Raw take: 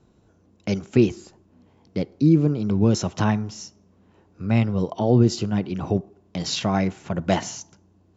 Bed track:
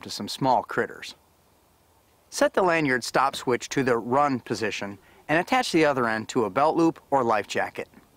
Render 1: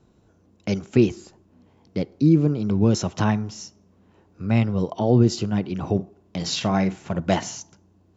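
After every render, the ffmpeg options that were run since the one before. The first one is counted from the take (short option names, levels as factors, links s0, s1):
-filter_complex "[0:a]asettb=1/sr,asplit=3[s0][s1][s2];[s0]atrim=end=5.944[s3];[s1]atrim=start=5.94:end=7.21,asetpts=PTS-STARTPTS,afade=t=in:d=0.004:c=qsin,afade=t=out:st=1.266:d=0.004:c=qsin,asplit=2[s4][s5];[s5]adelay=47,volume=0.237[s6];[s4][s6]amix=inputs=2:normalize=0,atrim=end_sample=56007[s7];[s2]atrim=start=7.206[s8];[s3][s7]acrossfade=d=0.004:c1=hsin:c2=qsin[s9];[s9][s8]acrossfade=d=0.004:c1=qsin:c2=hsin"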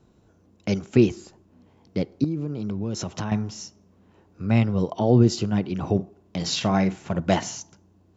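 -filter_complex "[0:a]asettb=1/sr,asplit=3[s0][s1][s2];[s0]atrim=end=2.244[s3];[s1]atrim=start=2.24:end=3.32,asetpts=PTS-STARTPTS,afade=t=in:d=0.004:c=qsin,afade=t=out:st=1.076:d=0.004:c=qsin,acompressor=threshold=0.0501:ratio=4:attack=3.2:release=140:knee=1:detection=peak[s4];[s2]atrim=start=3.316[s5];[s3][s4]acrossfade=d=0.004:c1=hsin:c2=qsin[s6];[s6][s5]acrossfade=d=0.004:c1=qsin:c2=hsin"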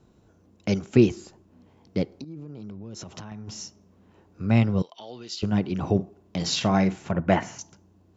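-filter_complex "[0:a]asplit=3[s0][s1][s2];[s0]afade=t=out:st=2.16:d=0.02[s3];[s1]acompressor=threshold=0.0158:ratio=6:attack=3.2:release=140:knee=1:detection=peak,afade=t=in:st=2.16:d=0.02,afade=t=out:st=3.47:d=0.02[s4];[s2]afade=t=in:st=3.47:d=0.02[s5];[s3][s4][s5]amix=inputs=3:normalize=0,asettb=1/sr,asplit=3[s6][s7][s8];[s6]atrim=end=4.824[s9];[s7]atrim=start=4.82:end=5.43,asetpts=PTS-STARTPTS,afade=t=in:d=0.004:c=qsin,afade=t=out:st=0.606:d=0.004:c=qsin,bandpass=f=3500:t=q:w=1.5[s10];[s8]atrim=start=5.426[s11];[s9][s10]acrossfade=d=0.004:c1=hsin:c2=qsin[s12];[s12][s11]acrossfade=d=0.004:c1=qsin:c2=hsin,asettb=1/sr,asplit=3[s13][s14][s15];[s13]atrim=end=7.114[s16];[s14]atrim=start=7.11:end=7.59,asetpts=PTS-STARTPTS,afade=t=in:d=0.004:c=qsin,afade=t=out:st=0.476:d=0.004:c=qsin,highshelf=f=2900:t=q:w=1.5:g=-10[s17];[s15]atrim=start=7.586[s18];[s16][s17]acrossfade=d=0.004:c1=hsin:c2=qsin[s19];[s19][s18]acrossfade=d=0.004:c1=qsin:c2=hsin"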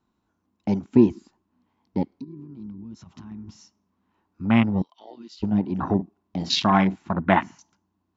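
-af "afwtdn=0.0316,equalizer=f=125:t=o:w=1:g=-6,equalizer=f=250:t=o:w=1:g=7,equalizer=f=500:t=o:w=1:g=-8,equalizer=f=1000:t=o:w=1:g=11,equalizer=f=2000:t=o:w=1:g=4,equalizer=f=4000:t=o:w=1:g=5"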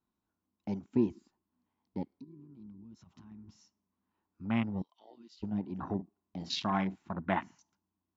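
-af "volume=0.237"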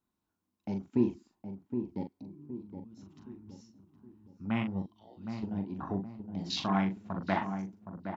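-filter_complex "[0:a]asplit=2[s0][s1];[s1]adelay=41,volume=0.447[s2];[s0][s2]amix=inputs=2:normalize=0,asplit=2[s3][s4];[s4]adelay=767,lowpass=f=940:p=1,volume=0.447,asplit=2[s5][s6];[s6]adelay=767,lowpass=f=940:p=1,volume=0.44,asplit=2[s7][s8];[s8]adelay=767,lowpass=f=940:p=1,volume=0.44,asplit=2[s9][s10];[s10]adelay=767,lowpass=f=940:p=1,volume=0.44,asplit=2[s11][s12];[s12]adelay=767,lowpass=f=940:p=1,volume=0.44[s13];[s3][s5][s7][s9][s11][s13]amix=inputs=6:normalize=0"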